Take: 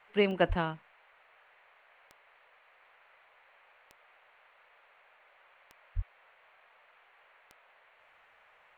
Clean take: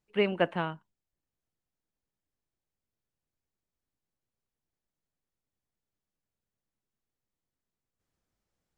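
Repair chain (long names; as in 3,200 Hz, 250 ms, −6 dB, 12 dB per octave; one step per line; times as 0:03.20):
click removal
0:00.48–0:00.60: high-pass filter 140 Hz 24 dB per octave
0:05.95–0:06.07: high-pass filter 140 Hz 24 dB per octave
noise reduction from a noise print 26 dB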